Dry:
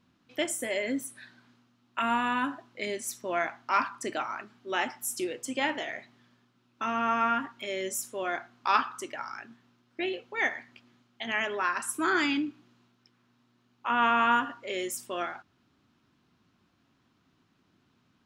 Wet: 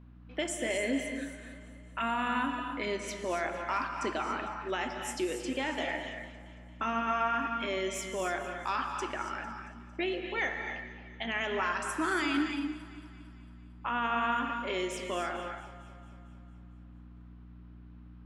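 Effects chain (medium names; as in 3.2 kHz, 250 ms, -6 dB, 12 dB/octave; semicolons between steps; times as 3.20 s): level-controlled noise filter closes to 2.1 kHz, open at -23.5 dBFS; in parallel at -2 dB: compression, threshold -41 dBFS, peak gain reduction 20.5 dB; on the sum: peak limiter -20 dBFS, peak gain reduction 10 dB; on a send: echo whose repeats swap between lows and highs 113 ms, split 1.5 kHz, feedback 76%, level -13 dB; on the sum: hum 60 Hz, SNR 17 dB; gated-style reverb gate 310 ms rising, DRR 5.5 dB; trim -2 dB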